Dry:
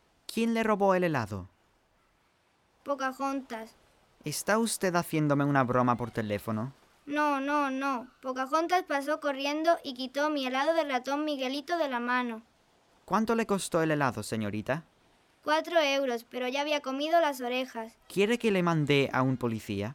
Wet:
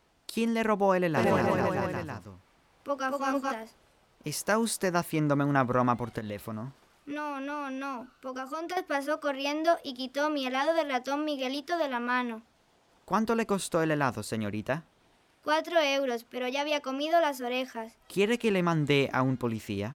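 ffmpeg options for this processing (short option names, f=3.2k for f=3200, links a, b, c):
-filter_complex "[0:a]asplit=3[a][b][c];[a]afade=t=out:st=1.16:d=0.02[d];[b]aecho=1:1:230|437|623.3|791|941.9:0.794|0.631|0.501|0.398|0.316,afade=t=in:st=1.16:d=0.02,afade=t=out:st=3.51:d=0.02[e];[c]afade=t=in:st=3.51:d=0.02[f];[d][e][f]amix=inputs=3:normalize=0,asettb=1/sr,asplit=3[g][h][i];[g]atrim=end=6.184[j];[h]atrim=start=6.18:end=8.77,asetpts=PTS-STARTPTS,afade=t=in:d=0.004:c=qsin,afade=t=out:st=2.586:d=0.004:c=qsin,acompressor=threshold=-32dB:ratio=4:attack=3.2:release=140:knee=1:detection=peak[k];[i]atrim=start=8.766[l];[j][k]acrossfade=d=0.004:c1=hsin:c2=qsin[m];[m][l]acrossfade=d=0.004:c1=qsin:c2=hsin"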